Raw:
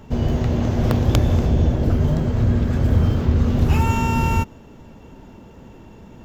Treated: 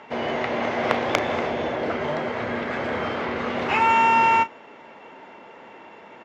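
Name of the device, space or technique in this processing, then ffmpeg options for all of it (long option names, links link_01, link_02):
megaphone: -filter_complex "[0:a]highpass=650,lowpass=2800,equalizer=frequency=2100:width_type=o:width=0.26:gain=8,asoftclip=type=hard:threshold=-11.5dB,asplit=2[link_01][link_02];[link_02]adelay=34,volume=-13.5dB[link_03];[link_01][link_03]amix=inputs=2:normalize=0,volume=8dB"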